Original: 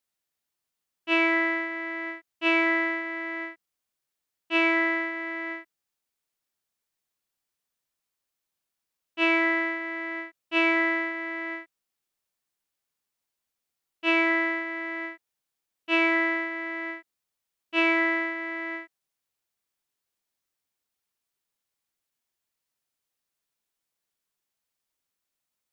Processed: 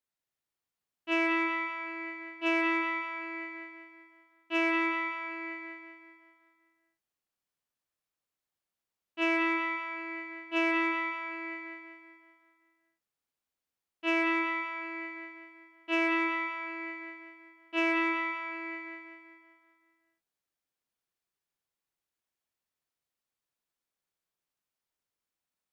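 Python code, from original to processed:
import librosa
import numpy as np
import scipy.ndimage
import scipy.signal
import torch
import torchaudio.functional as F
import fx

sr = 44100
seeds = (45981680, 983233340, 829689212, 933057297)

p1 = fx.high_shelf(x, sr, hz=3100.0, db=-6.0)
p2 = fx.echo_feedback(p1, sr, ms=192, feedback_pct=52, wet_db=-4)
p3 = fx.clip_asym(p2, sr, top_db=-20.5, bottom_db=-16.5)
p4 = p2 + (p3 * librosa.db_to_amplitude(-5.0))
y = p4 * librosa.db_to_amplitude(-8.0)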